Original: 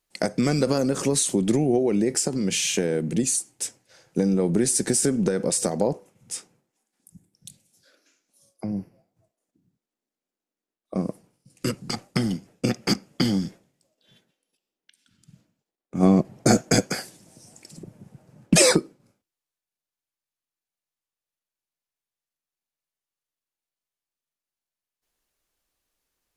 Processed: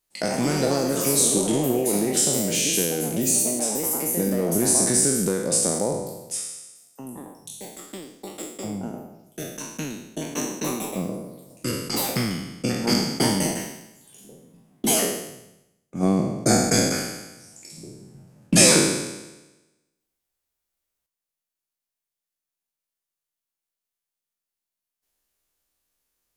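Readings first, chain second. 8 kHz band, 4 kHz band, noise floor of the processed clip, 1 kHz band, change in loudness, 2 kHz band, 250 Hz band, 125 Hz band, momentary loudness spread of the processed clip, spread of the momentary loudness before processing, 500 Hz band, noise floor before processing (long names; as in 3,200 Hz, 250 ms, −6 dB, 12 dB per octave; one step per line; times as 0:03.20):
+5.5 dB, +3.5 dB, below −85 dBFS, +3.0 dB, +1.5 dB, +2.5 dB, −0.5 dB, −1.0 dB, 20 LU, 13 LU, +0.5 dB, below −85 dBFS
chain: peak hold with a decay on every bin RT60 1.08 s
high-shelf EQ 7,700 Hz +8 dB
delay with pitch and tempo change per echo 136 ms, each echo +4 semitones, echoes 2, each echo −6 dB
level −4 dB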